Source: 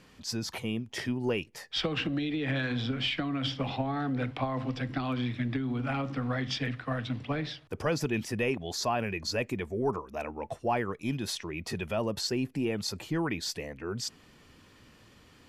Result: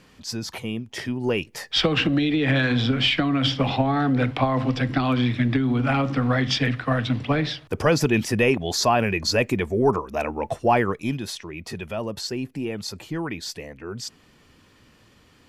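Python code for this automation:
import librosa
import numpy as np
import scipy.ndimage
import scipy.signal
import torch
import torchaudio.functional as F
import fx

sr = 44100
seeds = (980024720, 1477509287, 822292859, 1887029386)

y = fx.gain(x, sr, db=fx.line((1.09, 3.5), (1.62, 10.0), (10.89, 10.0), (11.31, 1.5)))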